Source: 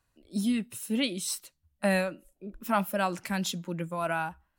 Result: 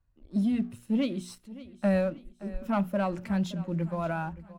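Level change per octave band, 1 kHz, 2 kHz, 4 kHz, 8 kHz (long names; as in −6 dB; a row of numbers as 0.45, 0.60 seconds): −3.5 dB, −6.5 dB, −10.0 dB, below −10 dB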